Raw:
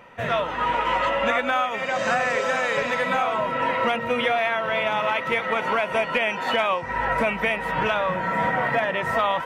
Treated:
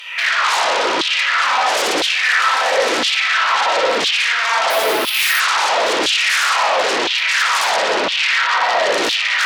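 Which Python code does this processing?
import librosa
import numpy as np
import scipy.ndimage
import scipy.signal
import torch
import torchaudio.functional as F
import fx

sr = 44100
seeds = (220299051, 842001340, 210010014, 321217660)

y = fx.over_compress(x, sr, threshold_db=-30.0, ratio=-1.0)
y = fx.rev_spring(y, sr, rt60_s=1.8, pass_ms=(57,), chirp_ms=70, drr_db=-1.5)
y = fx.fold_sine(y, sr, drive_db=18, ceiling_db=-9.0)
y = fx.filter_lfo_highpass(y, sr, shape='saw_down', hz=0.99, low_hz=300.0, high_hz=3500.0, q=3.0)
y = fx.resample_bad(y, sr, factor=3, down='none', up='hold', at=(4.7, 5.4))
y = F.gain(torch.from_numpy(y), -7.0).numpy()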